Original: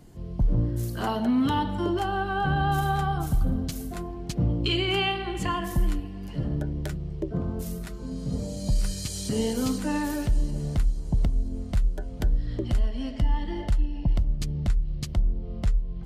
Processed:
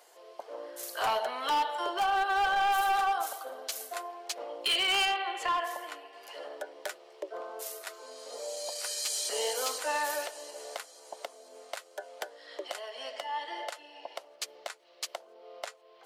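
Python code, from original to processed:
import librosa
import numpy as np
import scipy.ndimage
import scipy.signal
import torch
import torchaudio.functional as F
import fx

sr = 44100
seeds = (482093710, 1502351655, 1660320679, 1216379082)

y = scipy.signal.sosfilt(scipy.signal.butter(6, 510.0, 'highpass', fs=sr, output='sos'), x)
y = np.clip(10.0 ** (27.5 / 20.0) * y, -1.0, 1.0) / 10.0 ** (27.5 / 20.0)
y = fx.high_shelf(y, sr, hz=4600.0, db=-10.5, at=(5.05, 6.13))
y = y * 10.0 ** (3.5 / 20.0)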